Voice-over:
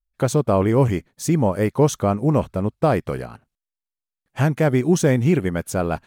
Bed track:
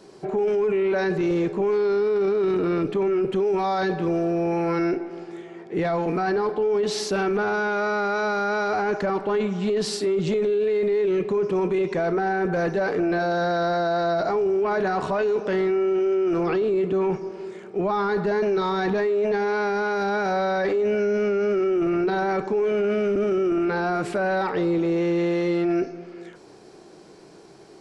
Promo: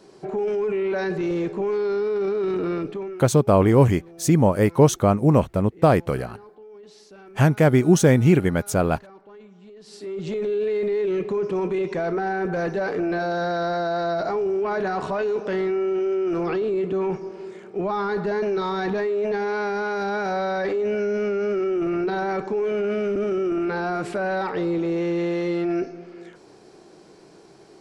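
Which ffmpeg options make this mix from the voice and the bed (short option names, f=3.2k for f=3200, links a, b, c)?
-filter_complex "[0:a]adelay=3000,volume=1.5dB[a];[1:a]volume=19dB,afade=t=out:st=2.7:d=0.57:silence=0.0944061,afade=t=in:st=9.84:d=0.73:silence=0.0891251[b];[a][b]amix=inputs=2:normalize=0"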